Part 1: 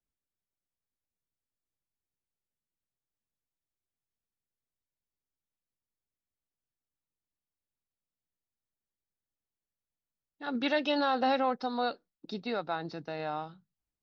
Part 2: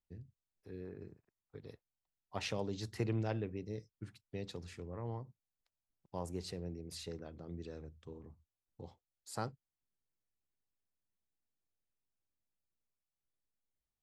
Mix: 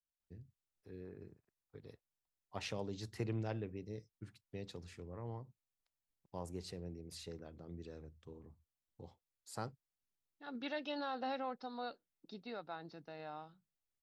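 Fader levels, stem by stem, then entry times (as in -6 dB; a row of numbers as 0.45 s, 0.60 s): -12.5 dB, -3.5 dB; 0.00 s, 0.20 s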